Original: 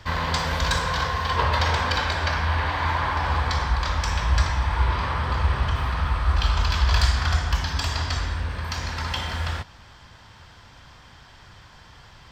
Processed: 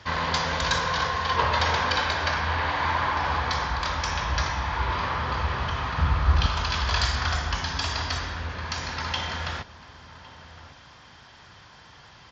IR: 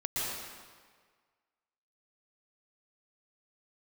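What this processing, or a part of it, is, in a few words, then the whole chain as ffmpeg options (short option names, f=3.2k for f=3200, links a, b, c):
Bluetooth headset: -filter_complex "[0:a]asettb=1/sr,asplit=3[a][b][c];[a]atrim=end=5.984[d];[b]atrim=start=5.98:end=6.46,asetpts=PTS-STARTPTS,afade=t=in:d=0.004:c=qsin,afade=t=out:st=0.476:d=0.004:c=qsin,equalizer=f=89:w=0.4:g=9.5[e];[c]atrim=start=6.456[f];[d][e]acrossfade=d=0.004:c1=hsin:c2=qsin[g];[g][f]acrossfade=d=0.004:c1=qsin:c2=hsin,highpass=f=150:p=1,asplit=2[h][i];[i]adelay=1108,volume=-15dB,highshelf=f=4k:g=-24.9[j];[h][j]amix=inputs=2:normalize=0,aresample=16000,aresample=44100" -ar 16000 -c:a sbc -b:a 64k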